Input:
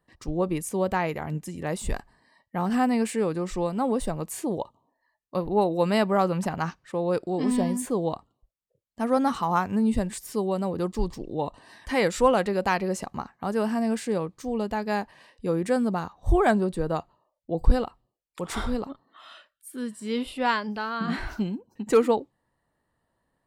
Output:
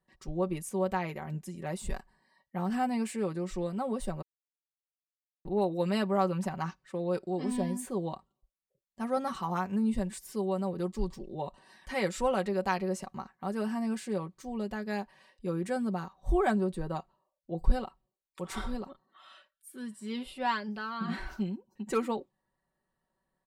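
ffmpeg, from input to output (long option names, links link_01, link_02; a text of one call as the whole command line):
ffmpeg -i in.wav -filter_complex "[0:a]asplit=3[link_01][link_02][link_03];[link_01]atrim=end=4.22,asetpts=PTS-STARTPTS,afade=type=out:start_time=4.216:duration=0.004:curve=hsin[link_04];[link_02]atrim=start=4.22:end=5.45,asetpts=PTS-STARTPTS,volume=0[link_05];[link_03]atrim=start=5.45,asetpts=PTS-STARTPTS,afade=type=in:duration=0.004:curve=hsin[link_06];[link_04][link_05][link_06]concat=n=3:v=0:a=1,aecho=1:1:5.3:0.65,volume=-8.5dB" out.wav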